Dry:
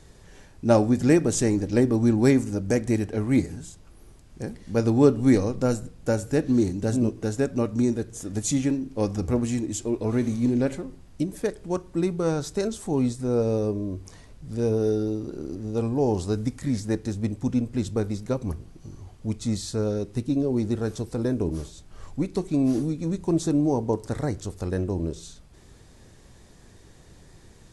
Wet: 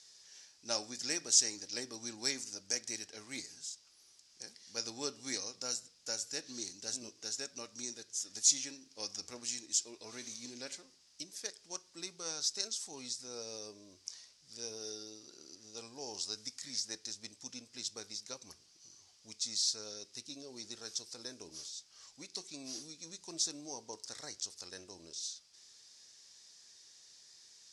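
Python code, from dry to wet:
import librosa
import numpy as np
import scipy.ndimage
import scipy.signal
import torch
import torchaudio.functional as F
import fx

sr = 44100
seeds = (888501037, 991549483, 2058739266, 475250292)

y = fx.bandpass_q(x, sr, hz=5300.0, q=3.4)
y = F.gain(torch.from_numpy(y), 8.5).numpy()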